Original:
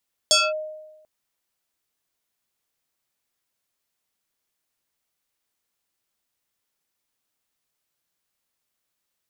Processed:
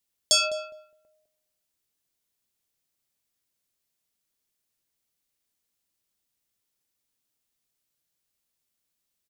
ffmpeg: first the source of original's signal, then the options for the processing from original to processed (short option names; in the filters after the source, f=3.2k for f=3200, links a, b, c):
-f lavfi -i "aevalsrc='0.251*pow(10,-3*t/1.09)*sin(2*PI*619*t+3.9*clip(1-t/0.22,0,1)*sin(2*PI*3.21*619*t))':d=0.74:s=44100"
-filter_complex "[0:a]equalizer=f=1.1k:t=o:w=2.6:g=-7,asplit=2[a][b];[b]adelay=206,lowpass=f=1k:p=1,volume=-8dB,asplit=2[c][d];[d]adelay=206,lowpass=f=1k:p=1,volume=0.21,asplit=2[e][f];[f]adelay=206,lowpass=f=1k:p=1,volume=0.21[g];[a][c][e][g]amix=inputs=4:normalize=0"